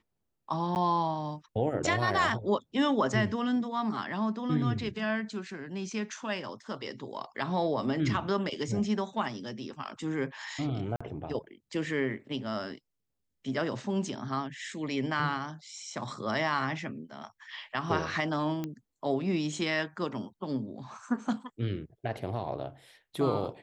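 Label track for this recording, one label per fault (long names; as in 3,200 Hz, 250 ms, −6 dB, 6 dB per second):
0.750000	0.760000	drop-out 9.7 ms
10.960000	11.010000	drop-out 45 ms
18.640000	18.640000	click −21 dBFS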